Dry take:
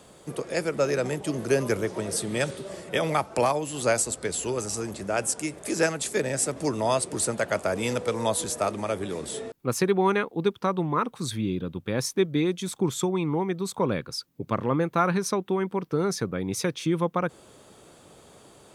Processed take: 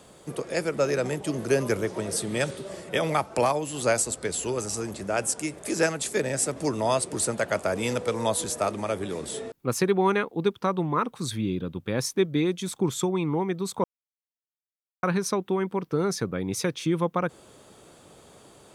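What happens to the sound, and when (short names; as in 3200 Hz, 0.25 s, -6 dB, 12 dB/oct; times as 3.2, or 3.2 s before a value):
13.84–15.03 mute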